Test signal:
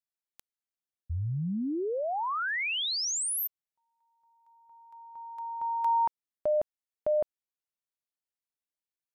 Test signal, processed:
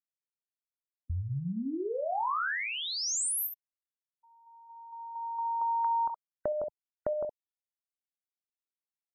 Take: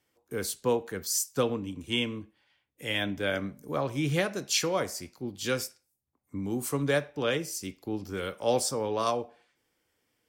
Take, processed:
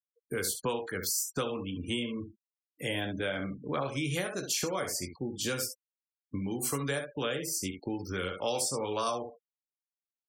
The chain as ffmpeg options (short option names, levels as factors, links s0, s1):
-filter_complex "[0:a]aecho=1:1:22|67:0.447|0.355,acrossover=split=1200|7500[s0][s1][s2];[s0]acompressor=threshold=0.0126:ratio=5[s3];[s1]acompressor=threshold=0.00891:ratio=8[s4];[s2]acompressor=threshold=0.00891:ratio=2.5[s5];[s3][s4][s5]amix=inputs=3:normalize=0,afftfilt=real='re*gte(hypot(re,im),0.00398)':imag='im*gte(hypot(re,im),0.00398)':win_size=1024:overlap=0.75,volume=1.88"